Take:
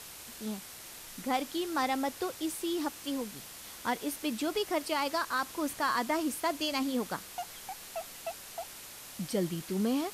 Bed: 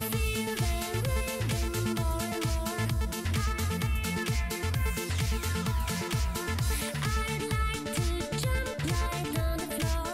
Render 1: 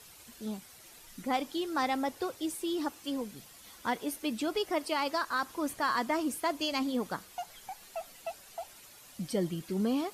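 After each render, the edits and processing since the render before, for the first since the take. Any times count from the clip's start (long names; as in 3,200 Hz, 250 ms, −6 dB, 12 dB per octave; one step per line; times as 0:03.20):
broadband denoise 10 dB, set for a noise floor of −48 dBFS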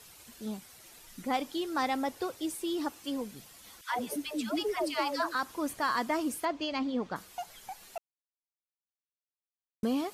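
0:03.81–0:05.35: all-pass dispersion lows, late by 137 ms, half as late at 590 Hz
0:06.45–0:07.16: high-frequency loss of the air 150 metres
0:07.98–0:09.83: silence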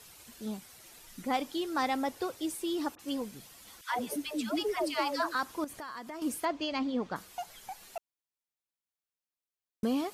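0:02.95–0:03.68: all-pass dispersion highs, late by 44 ms, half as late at 2,300 Hz
0:05.64–0:06.22: downward compressor 5 to 1, threshold −40 dBFS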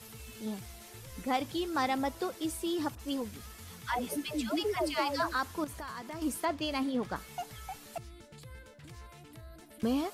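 mix in bed −20 dB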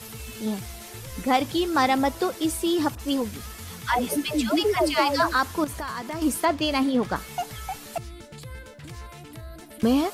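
level +9.5 dB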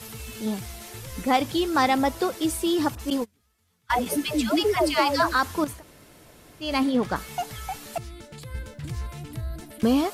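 0:03.10–0:04.06: noise gate −26 dBFS, range −31 dB
0:05.76–0:06.66: fill with room tone, crossfade 0.16 s
0:08.54–0:09.71: bass and treble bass +9 dB, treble +2 dB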